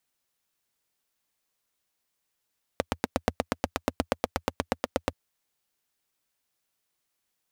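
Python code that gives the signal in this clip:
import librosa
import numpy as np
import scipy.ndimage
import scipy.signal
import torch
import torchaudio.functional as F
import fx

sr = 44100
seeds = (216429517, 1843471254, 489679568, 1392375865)

y = fx.engine_single(sr, seeds[0], length_s=2.33, rpm=1000, resonances_hz=(84.0, 250.0, 500.0))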